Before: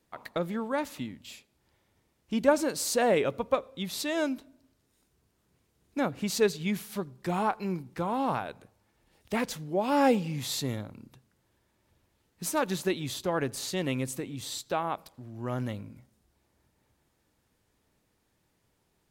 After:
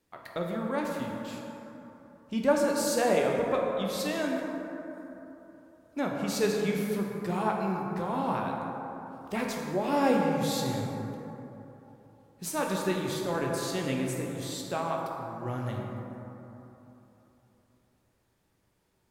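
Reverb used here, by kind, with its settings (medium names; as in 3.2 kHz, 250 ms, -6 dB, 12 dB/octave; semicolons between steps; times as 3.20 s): plate-style reverb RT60 3.4 s, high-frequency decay 0.35×, DRR -1 dB; trim -3.5 dB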